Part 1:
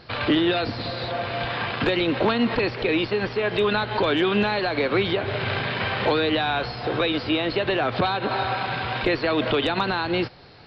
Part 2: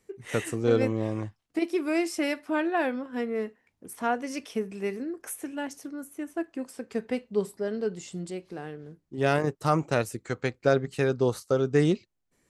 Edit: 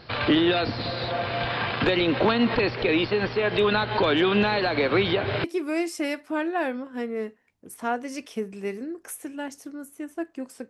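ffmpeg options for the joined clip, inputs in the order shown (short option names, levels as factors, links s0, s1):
-filter_complex "[1:a]asplit=2[s0][s1];[0:a]apad=whole_dur=10.69,atrim=end=10.69,atrim=end=5.442[s2];[s1]atrim=start=1.628:end=6.88[s3];[s0]atrim=start=0.71:end=1.63,asetpts=PTS-STARTPTS,volume=0.133,afade=t=in:d=0.004:c=hsin,afade=t=out:st=0.916:d=0.004:c=hsin,adelay=4520[s4];[s2][s3]acrossfade=d=0.004:c1=hsin:c2=hsin[s5];[s5][s4]amix=inputs=2:normalize=0"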